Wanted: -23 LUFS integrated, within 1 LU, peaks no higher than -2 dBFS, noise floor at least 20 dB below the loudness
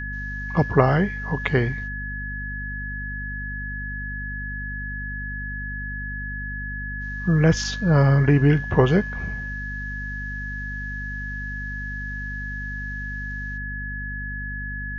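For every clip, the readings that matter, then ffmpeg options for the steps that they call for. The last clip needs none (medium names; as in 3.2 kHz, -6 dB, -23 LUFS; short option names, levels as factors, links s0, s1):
hum 50 Hz; highest harmonic 250 Hz; hum level -30 dBFS; steady tone 1.7 kHz; tone level -31 dBFS; loudness -25.0 LUFS; peak level -2.0 dBFS; loudness target -23.0 LUFS
-> -af "bandreject=f=50:t=h:w=6,bandreject=f=100:t=h:w=6,bandreject=f=150:t=h:w=6,bandreject=f=200:t=h:w=6,bandreject=f=250:t=h:w=6"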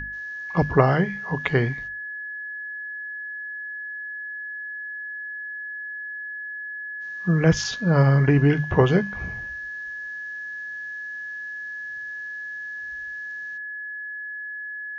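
hum not found; steady tone 1.7 kHz; tone level -31 dBFS
-> -af "bandreject=f=1700:w=30"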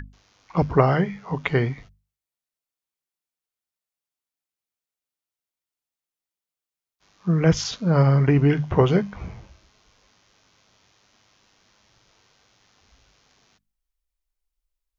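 steady tone not found; loudness -21.5 LUFS; peak level -3.0 dBFS; loudness target -23.0 LUFS
-> -af "volume=0.841"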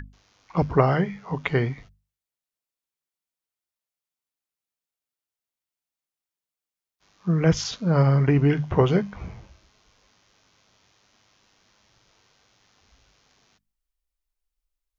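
loudness -23.0 LUFS; peak level -4.5 dBFS; noise floor -91 dBFS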